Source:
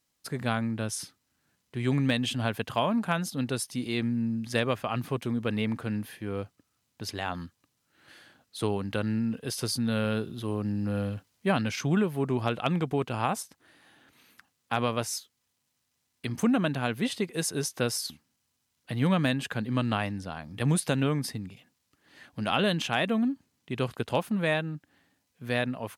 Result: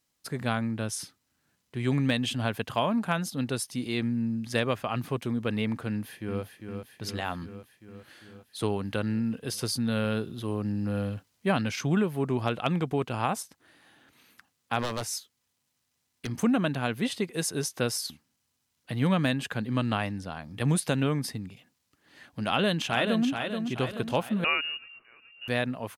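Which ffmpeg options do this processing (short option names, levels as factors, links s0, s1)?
-filter_complex "[0:a]asplit=2[s0][s1];[s1]afade=t=in:st=5.88:d=0.01,afade=t=out:st=6.43:d=0.01,aecho=0:1:400|800|1200|1600|2000|2400|2800|3200|3600|4000|4400:0.473151|0.331206|0.231844|0.162291|0.113604|0.0795225|0.0556658|0.038966|0.0272762|0.0190934|0.0133654[s2];[s0][s2]amix=inputs=2:normalize=0,asettb=1/sr,asplit=3[s3][s4][s5];[s3]atrim=end=14.794[s6];[s4]atrim=start=14.79:end=16.34,asetpts=PTS-STARTPTS,afade=t=in:d=0.004:c=qsin,afade=t=out:st=1.546:d=0.004:c=qsin,aeval=exprs='0.0668*(abs(mod(val(0)/0.0668+3,4)-2)-1)':c=same[s7];[s5]atrim=start=16.336[s8];[s6][s7]acrossfade=d=0.004:c1=hsin:c2=qsin[s9];[s9][s8]acrossfade=d=0.004:c1=qsin:c2=hsin,asplit=2[s10][s11];[s11]afade=t=in:st=22.46:d=0.01,afade=t=out:st=23.26:d=0.01,aecho=0:1:430|860|1290|1720|2150|2580:0.501187|0.250594|0.125297|0.0626484|0.0313242|0.0156621[s12];[s10][s12]amix=inputs=2:normalize=0,asettb=1/sr,asplit=3[s13][s14][s15];[s13]atrim=end=24.444[s16];[s14]atrim=start=24.44:end=25.48,asetpts=PTS-STARTPTS,afade=t=in:d=0.004:c=qsin,afade=t=out:st=1.036:d=0.004:c=qsin,lowpass=f=2600:t=q:w=0.5098,lowpass=f=2600:t=q:w=0.6013,lowpass=f=2600:t=q:w=0.9,lowpass=f=2600:t=q:w=2.563,afreqshift=-3000[s17];[s15]atrim=start=25.476[s18];[s16][s17]acrossfade=d=0.004:c1=hsin:c2=qsin[s19];[s19][s18]acrossfade=d=0.004:c1=qsin:c2=hsin"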